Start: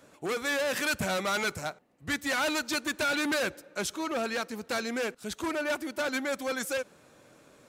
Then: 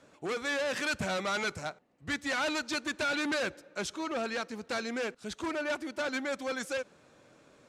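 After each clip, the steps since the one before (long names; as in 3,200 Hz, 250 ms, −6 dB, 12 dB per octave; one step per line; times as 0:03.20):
low-pass filter 7,200 Hz 12 dB per octave
level −2.5 dB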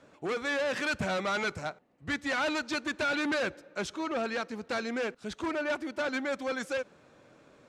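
high-shelf EQ 5,000 Hz −8.5 dB
level +2 dB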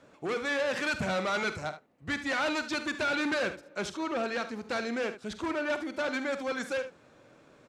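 ambience of single reflections 47 ms −13.5 dB, 74 ms −12.5 dB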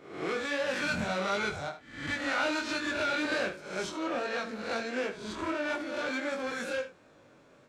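peak hold with a rise ahead of every peak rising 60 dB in 0.66 s
chorus effect 1.4 Hz, delay 19.5 ms, depth 3.4 ms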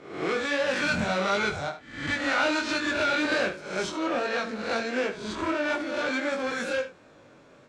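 low-pass filter 9,000 Hz 12 dB per octave
level +5 dB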